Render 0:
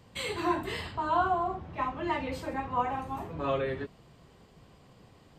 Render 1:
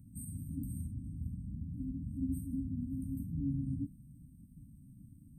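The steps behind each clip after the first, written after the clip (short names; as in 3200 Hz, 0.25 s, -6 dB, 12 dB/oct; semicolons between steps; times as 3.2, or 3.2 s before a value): FFT band-reject 300–8200 Hz; gain +3.5 dB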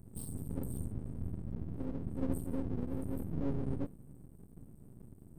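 half-wave rectifier; gain +5 dB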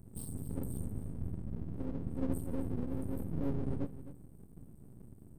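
echo 0.26 s -13.5 dB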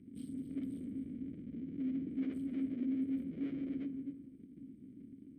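sine folder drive 11 dB, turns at -20 dBFS; vowel filter i; on a send at -12.5 dB: reverb RT60 1.5 s, pre-delay 7 ms; on the sum: gain -1.5 dB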